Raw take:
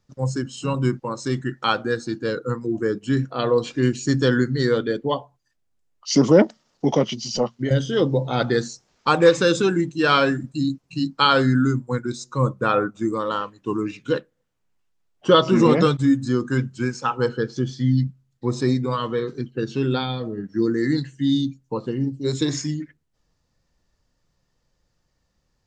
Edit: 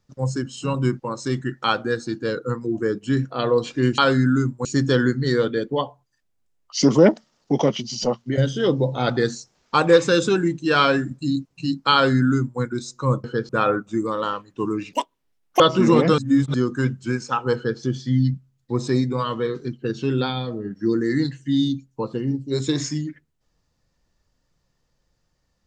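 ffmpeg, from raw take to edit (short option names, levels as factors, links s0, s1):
-filter_complex "[0:a]asplit=9[s0][s1][s2][s3][s4][s5][s6][s7][s8];[s0]atrim=end=3.982[s9];[s1]atrim=start=11.268:end=11.942[s10];[s2]atrim=start=3.978:end=12.572[s11];[s3]atrim=start=17.278:end=17.532[s12];[s4]atrim=start=12.568:end=14.014[s13];[s5]atrim=start=14.01:end=15.33,asetpts=PTS-STARTPTS,asetrate=86877,aresample=44100,atrim=end_sample=29549,asetpts=PTS-STARTPTS[s14];[s6]atrim=start=15.326:end=15.912[s15];[s7]atrim=start=15.908:end=16.272,asetpts=PTS-STARTPTS,areverse[s16];[s8]atrim=start=16.268[s17];[s9][s10]acrossfade=d=0.004:c1=hsin:c2=hsin[s18];[s18][s11]acrossfade=d=0.004:c1=hsin:c2=hsin[s19];[s19][s12]acrossfade=d=0.004:c1=hsin:c2=hsin[s20];[s20][s13]acrossfade=d=0.004:c1=hsin:c2=hsin[s21];[s21][s14]acrossfade=d=0.004:c1=hsin:c2=hsin[s22];[s22][s15]acrossfade=d=0.004:c1=hsin:c2=hsin[s23];[s23][s16]acrossfade=d=0.004:c1=hsin:c2=hsin[s24];[s24][s17]acrossfade=d=0.004:c1=hsin:c2=hsin"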